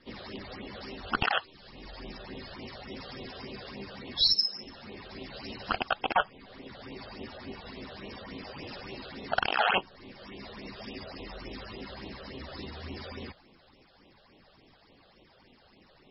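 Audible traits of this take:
phaser sweep stages 8, 3.5 Hz, lowest notch 270–1,600 Hz
MP3

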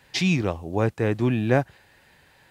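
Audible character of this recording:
background noise floor −58 dBFS
spectral slope −5.5 dB per octave

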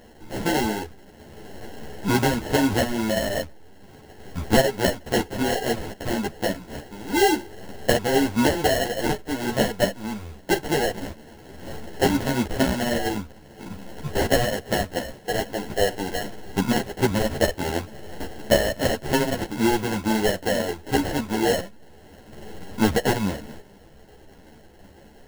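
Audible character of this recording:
aliases and images of a low sample rate 1,200 Hz, jitter 0%
a shimmering, thickened sound

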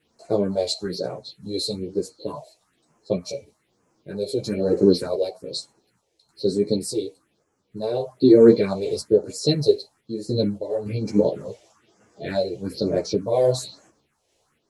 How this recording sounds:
phaser sweep stages 4, 1.1 Hz, lowest notch 200–3,800 Hz
sample-and-hold tremolo 3.5 Hz
a shimmering, thickened sound

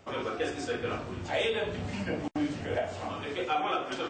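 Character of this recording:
background noise floor −39 dBFS
spectral slope −3.5 dB per octave

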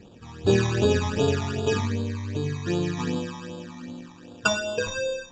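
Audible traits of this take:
aliases and images of a low sample rate 2,100 Hz, jitter 0%
phaser sweep stages 12, 2.6 Hz, lowest notch 470–2,000 Hz
Ogg Vorbis

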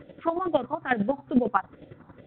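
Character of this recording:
phaser sweep stages 4, 2.3 Hz, lowest notch 480–1,100 Hz
chopped level 11 Hz, depth 65%, duty 25%
mu-law

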